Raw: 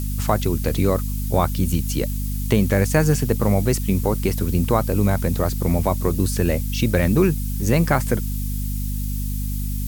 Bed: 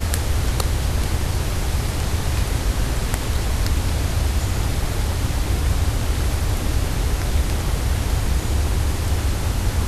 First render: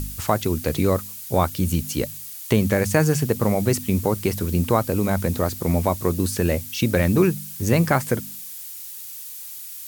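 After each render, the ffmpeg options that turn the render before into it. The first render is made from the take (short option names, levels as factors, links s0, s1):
-af "bandreject=f=50:t=h:w=4,bandreject=f=100:t=h:w=4,bandreject=f=150:t=h:w=4,bandreject=f=200:t=h:w=4,bandreject=f=250:t=h:w=4"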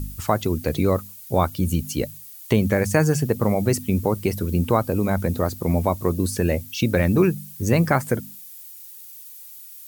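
-af "afftdn=nr=9:nf=-37"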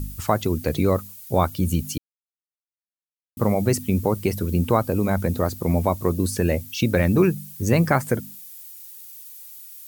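-filter_complex "[0:a]asplit=3[s0][s1][s2];[s0]atrim=end=1.98,asetpts=PTS-STARTPTS,afade=t=out:st=1.976:d=0.004:c=hsin[s3];[s1]atrim=start=1.98:end=3.37,asetpts=PTS-STARTPTS,volume=0[s4];[s2]atrim=start=3.37,asetpts=PTS-STARTPTS,afade=t=in:d=0.004:c=hsin[s5];[s3][s4][s5]concat=n=3:v=0:a=1"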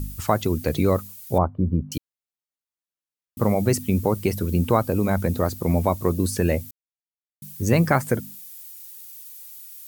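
-filter_complex "[0:a]asettb=1/sr,asplit=3[s0][s1][s2];[s0]atrim=end=1.384[s3];[s1]atrim=start=1.38:end=1.92,asetpts=PTS-STARTPTS,afade=t=in:d=0.004:c=qsin,afade=t=out:st=0.536:d=0.004:c=qsin,lowpass=f=1100:w=0.5412,lowpass=f=1100:w=1.3066[s4];[s2]atrim=start=1.916[s5];[s3][s4]acrossfade=d=0.004:c1=hsin:c2=qsin[s6];[s6][s5]acrossfade=d=0.004:c1=qsin:c2=hsin,asplit=3[s7][s8][s9];[s7]atrim=end=6.71,asetpts=PTS-STARTPTS,afade=t=out:st=6.706:d=0.004:c=hsin[s10];[s8]atrim=start=6.71:end=7.42,asetpts=PTS-STARTPTS,volume=0[s11];[s9]atrim=start=7.42,asetpts=PTS-STARTPTS,afade=t=in:d=0.004:c=hsin[s12];[s10][s11][s12]concat=n=3:v=0:a=1"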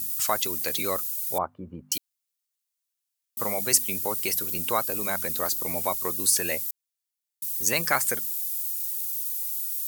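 -af "highpass=f=1400:p=1,highshelf=f=3200:g=11.5"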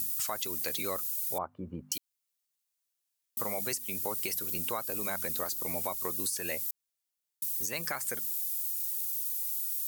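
-af "alimiter=limit=0.158:level=0:latency=1:release=428,acompressor=threshold=0.0282:ratio=3"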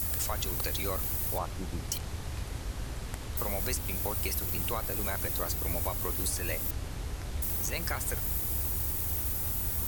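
-filter_complex "[1:a]volume=0.158[s0];[0:a][s0]amix=inputs=2:normalize=0"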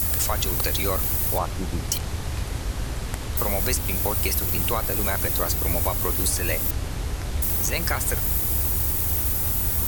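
-af "volume=2.66"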